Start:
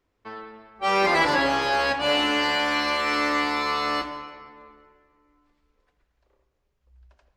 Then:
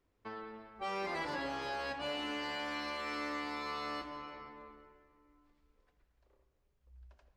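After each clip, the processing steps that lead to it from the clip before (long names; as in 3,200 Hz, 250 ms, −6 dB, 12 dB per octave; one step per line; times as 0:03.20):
low-shelf EQ 460 Hz +4 dB
downward compressor 2.5 to 1, threshold −36 dBFS, peak gain reduction 13.5 dB
level −6 dB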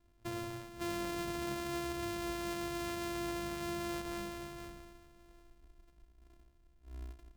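samples sorted by size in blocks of 128 samples
low-shelf EQ 200 Hz +10 dB
brickwall limiter −32 dBFS, peak gain reduction 7.5 dB
level +3 dB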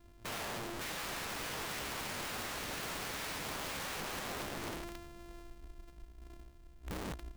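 wrap-around overflow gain 45.5 dB
level +9.5 dB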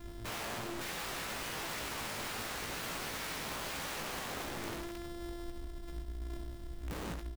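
downward compressor, threshold −47 dBFS, peak gain reduction 8 dB
brickwall limiter −49 dBFS, peak gain reduction 10 dB
on a send: ambience of single reflections 18 ms −6 dB, 67 ms −7.5 dB
on the sum: level +12 dB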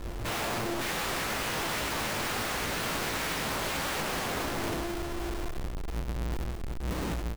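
each half-wave held at its own peak
level +4 dB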